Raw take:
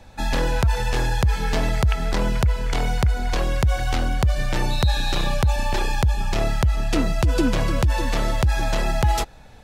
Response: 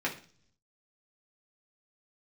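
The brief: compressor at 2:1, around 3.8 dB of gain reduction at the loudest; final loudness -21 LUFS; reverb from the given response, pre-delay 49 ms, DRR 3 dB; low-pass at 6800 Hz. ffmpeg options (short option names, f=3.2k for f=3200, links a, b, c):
-filter_complex "[0:a]lowpass=6.8k,acompressor=threshold=-21dB:ratio=2,asplit=2[a][b];[1:a]atrim=start_sample=2205,adelay=49[c];[b][c]afir=irnorm=-1:irlink=0,volume=-10.5dB[d];[a][d]amix=inputs=2:normalize=0,volume=3.5dB"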